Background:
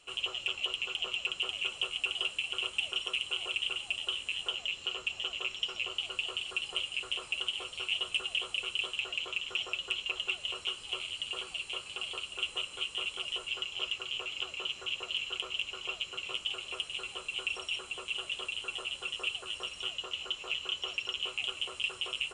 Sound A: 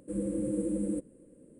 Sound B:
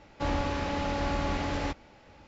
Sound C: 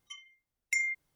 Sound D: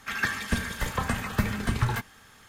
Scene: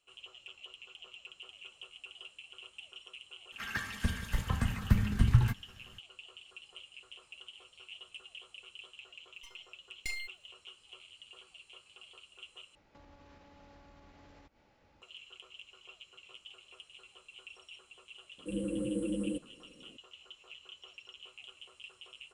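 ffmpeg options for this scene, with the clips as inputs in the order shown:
-filter_complex "[0:a]volume=-16.5dB[a];[4:a]asubboost=boost=8.5:cutoff=220[b];[3:a]aeval=exprs='max(val(0),0)':c=same[c];[2:a]acompressor=threshold=-38dB:ratio=20:attack=0.15:release=266:knee=1:detection=peak[d];[a]asplit=2[e][f];[e]atrim=end=12.754[g];[d]atrim=end=2.27,asetpts=PTS-STARTPTS,volume=-12.5dB[h];[f]atrim=start=15.016[i];[b]atrim=end=2.48,asetpts=PTS-STARTPTS,volume=-9.5dB,afade=t=in:d=0.004:c=hsin,afade=t=out:st=2.476:d=0.004:c=hsin,adelay=3520[j];[c]atrim=end=1.15,asetpts=PTS-STARTPTS,volume=-4.5dB,afade=t=in:d=0.004:c=hsin,afade=t=out:st=1.146:d=0.004:c=hsin,adelay=9330[k];[1:a]atrim=end=1.59,asetpts=PTS-STARTPTS,volume=-3dB,afade=t=in:d=0.004:c=hsin,afade=t=out:st=1.586:d=0.004:c=hsin,adelay=18380[l];[g][h]acrossfade=d=0.004:c1=hsin:c2=hsin[m];[m][i]acrossfade=d=0.004:c1=hsin:c2=hsin[n];[n][j][k][l]amix=inputs=4:normalize=0"

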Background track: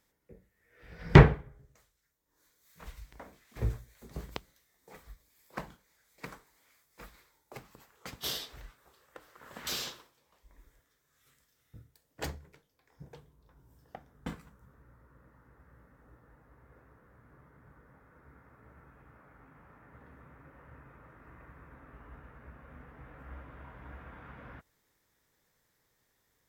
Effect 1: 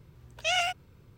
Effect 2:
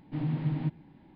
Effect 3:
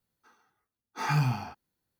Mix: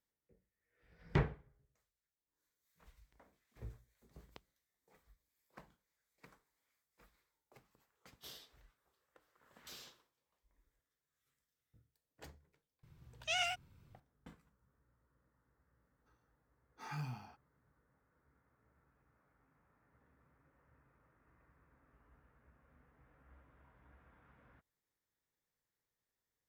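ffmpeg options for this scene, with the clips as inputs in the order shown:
-filter_complex "[0:a]volume=-17.5dB[a];[1:a]equalizer=f=450:w=1.7:g=-8.5,atrim=end=1.17,asetpts=PTS-STARTPTS,volume=-8dB,afade=t=in:d=0.004:c=hsin,afade=t=out:st=1.166:d=0.004:c=hsin,adelay=12830[b];[3:a]atrim=end=1.99,asetpts=PTS-STARTPTS,volume=-17dB,afade=t=in:d=0.004:c=hsin,afade=t=out:st=1.986:d=0.004:c=hsin,adelay=15820[c];[a][b][c]amix=inputs=3:normalize=0"

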